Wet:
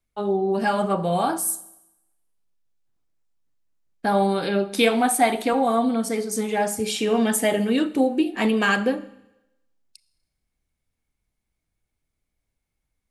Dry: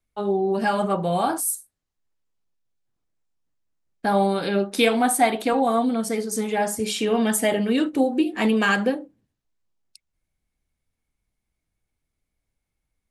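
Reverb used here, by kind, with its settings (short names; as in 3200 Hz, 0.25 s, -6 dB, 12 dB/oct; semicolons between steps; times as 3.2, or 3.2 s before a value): Schroeder reverb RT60 0.92 s, combs from 27 ms, DRR 16 dB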